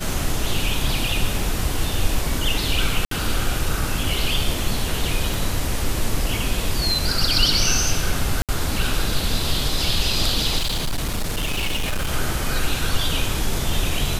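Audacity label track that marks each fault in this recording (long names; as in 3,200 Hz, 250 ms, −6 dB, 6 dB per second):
3.050000	3.110000	drop-out 63 ms
5.340000	5.340000	click
8.420000	8.490000	drop-out 67 ms
10.570000	12.130000	clipping −19 dBFS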